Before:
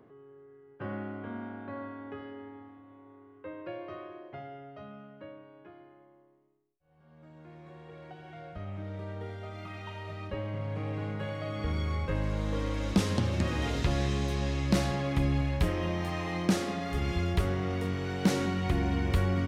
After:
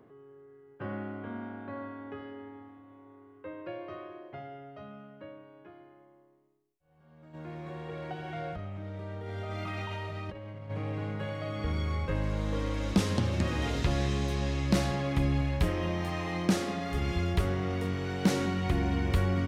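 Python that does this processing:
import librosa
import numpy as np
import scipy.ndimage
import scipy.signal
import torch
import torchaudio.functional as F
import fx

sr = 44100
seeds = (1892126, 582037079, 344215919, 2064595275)

y = fx.over_compress(x, sr, threshold_db=-43.0, ratio=-1.0, at=(7.33, 10.69), fade=0.02)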